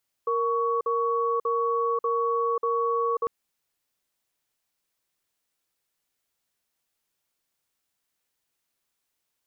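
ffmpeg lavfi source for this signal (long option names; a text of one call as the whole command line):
ffmpeg -f lavfi -i "aevalsrc='0.0562*(sin(2*PI*466*t)+sin(2*PI*1120*t))*clip(min(mod(t,0.59),0.54-mod(t,0.59))/0.005,0,1)':duration=3:sample_rate=44100" out.wav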